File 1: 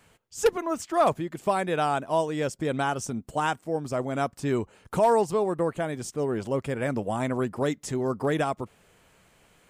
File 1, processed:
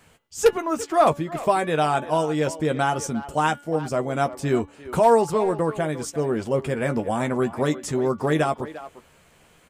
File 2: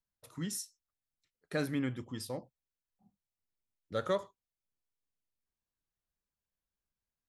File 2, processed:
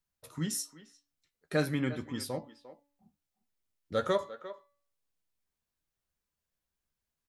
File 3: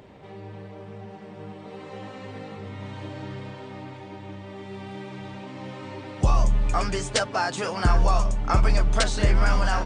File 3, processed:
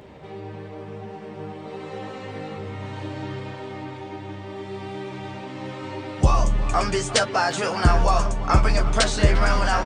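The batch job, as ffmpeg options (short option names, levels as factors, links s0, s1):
-filter_complex "[0:a]asplit=2[s0][s1];[s1]adelay=13,volume=0.376[s2];[s0][s2]amix=inputs=2:normalize=0,bandreject=f=286.3:t=h:w=4,bandreject=f=572.6:t=h:w=4,bandreject=f=858.9:t=h:w=4,bandreject=f=1145.2:t=h:w=4,bandreject=f=1431.5:t=h:w=4,bandreject=f=1717.8:t=h:w=4,bandreject=f=2004.1:t=h:w=4,bandreject=f=2290.4:t=h:w=4,bandreject=f=2576.7:t=h:w=4,bandreject=f=2863:t=h:w=4,bandreject=f=3149.3:t=h:w=4,bandreject=f=3435.6:t=h:w=4,bandreject=f=3721.9:t=h:w=4,bandreject=f=4008.2:t=h:w=4,asplit=2[s3][s4];[s4]adelay=350,highpass=300,lowpass=3400,asoftclip=type=hard:threshold=0.133,volume=0.2[s5];[s3][s5]amix=inputs=2:normalize=0,volume=1.5"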